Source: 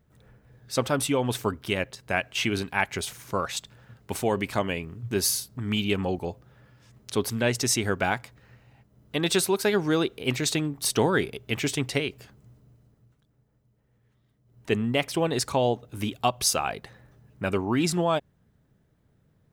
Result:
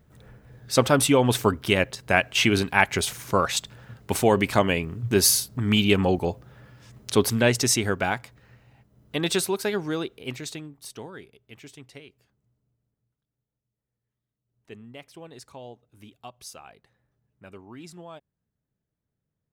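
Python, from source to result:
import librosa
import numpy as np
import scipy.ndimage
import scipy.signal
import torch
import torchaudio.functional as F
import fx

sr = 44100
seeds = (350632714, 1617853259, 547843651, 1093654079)

y = fx.gain(x, sr, db=fx.line((7.25, 6.0), (8.06, 0.0), (9.23, 0.0), (10.29, -7.0), (11.14, -18.5)))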